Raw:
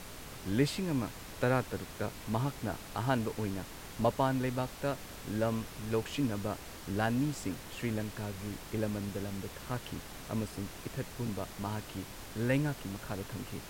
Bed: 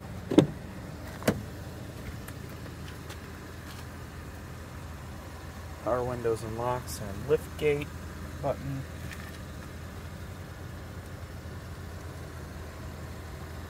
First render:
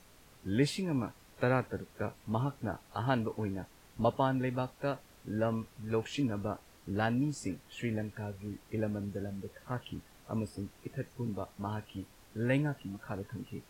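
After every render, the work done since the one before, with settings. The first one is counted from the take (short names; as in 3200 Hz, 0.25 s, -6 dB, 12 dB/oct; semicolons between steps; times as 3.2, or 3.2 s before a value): noise print and reduce 13 dB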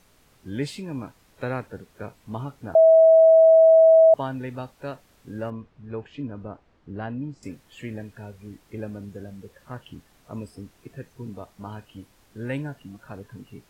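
2.75–4.14 bleep 648 Hz -10 dBFS; 5.5–7.43 tape spacing loss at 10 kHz 28 dB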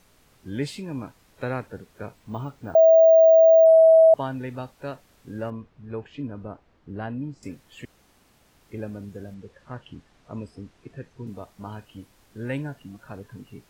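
2.17–3.65 careless resampling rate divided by 2×, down filtered, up hold; 7.85–8.61 room tone; 9.34–11.27 air absorption 68 m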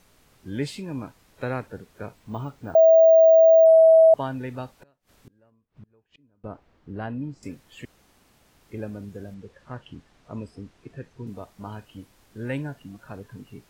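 4.76–6.44 flipped gate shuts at -37 dBFS, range -30 dB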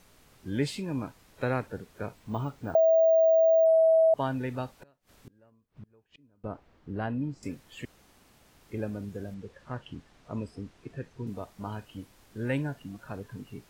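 limiter -13 dBFS, peak gain reduction 3 dB; compressor, threshold -19 dBFS, peak gain reduction 4.5 dB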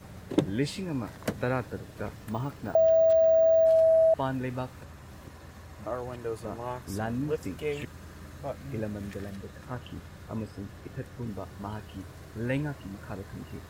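add bed -5.5 dB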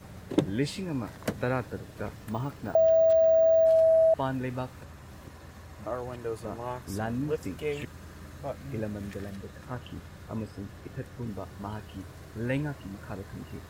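nothing audible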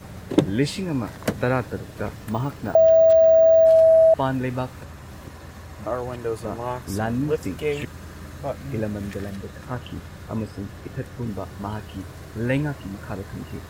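gain +7 dB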